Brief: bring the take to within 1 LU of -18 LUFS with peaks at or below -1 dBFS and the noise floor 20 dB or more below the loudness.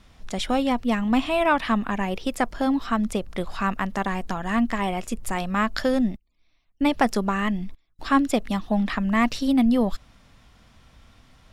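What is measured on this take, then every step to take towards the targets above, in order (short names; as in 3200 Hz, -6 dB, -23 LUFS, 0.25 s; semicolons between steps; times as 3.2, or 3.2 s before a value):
loudness -24.5 LUFS; peak -6.5 dBFS; loudness target -18.0 LUFS
-> gain +6.5 dB; limiter -1 dBFS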